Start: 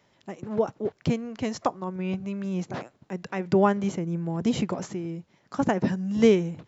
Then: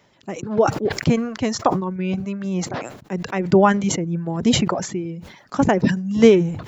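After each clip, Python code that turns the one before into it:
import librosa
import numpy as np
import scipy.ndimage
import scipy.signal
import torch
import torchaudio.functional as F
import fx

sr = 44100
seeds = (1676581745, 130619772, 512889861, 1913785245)

y = fx.dereverb_blind(x, sr, rt60_s=0.84)
y = fx.sustainer(y, sr, db_per_s=77.0)
y = y * 10.0 ** (7.0 / 20.0)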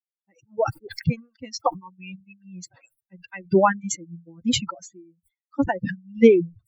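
y = fx.bin_expand(x, sr, power=3.0)
y = y * 10.0 ** (1.0 / 20.0)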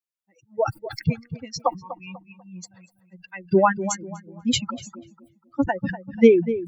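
y = fx.echo_filtered(x, sr, ms=245, feedback_pct=35, hz=1500.0, wet_db=-12.0)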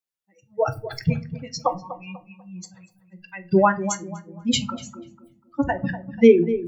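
y = fx.room_shoebox(x, sr, seeds[0], volume_m3=160.0, walls='furnished', distance_m=0.58)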